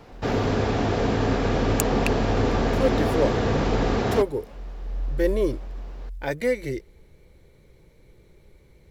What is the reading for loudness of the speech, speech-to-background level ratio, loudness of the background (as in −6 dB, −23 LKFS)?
−29.0 LKFS, −5.0 dB, −24.0 LKFS